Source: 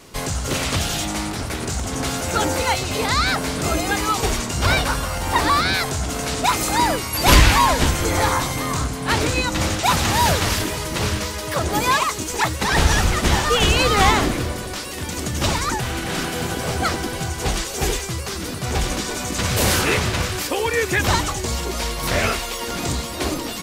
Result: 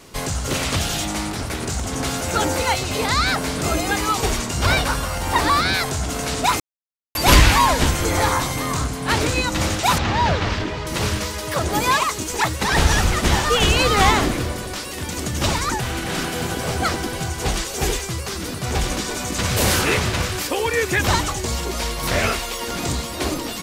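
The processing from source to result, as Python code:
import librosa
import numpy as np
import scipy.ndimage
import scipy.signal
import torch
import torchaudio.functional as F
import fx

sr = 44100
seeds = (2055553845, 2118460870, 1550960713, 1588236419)

y = fx.air_absorb(x, sr, metres=180.0, at=(9.98, 10.87))
y = fx.edit(y, sr, fx.silence(start_s=6.6, length_s=0.55), tone=tone)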